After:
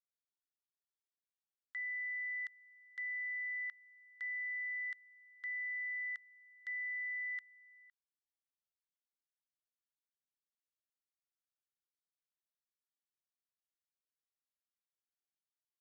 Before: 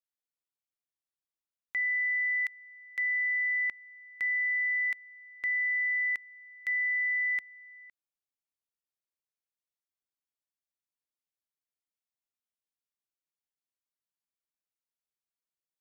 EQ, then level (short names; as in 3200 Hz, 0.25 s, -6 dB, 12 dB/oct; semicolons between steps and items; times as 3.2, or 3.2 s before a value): HPF 1300 Hz 24 dB/oct; Butterworth band-stop 2400 Hz, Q 2.2; air absorption 100 m; -5.0 dB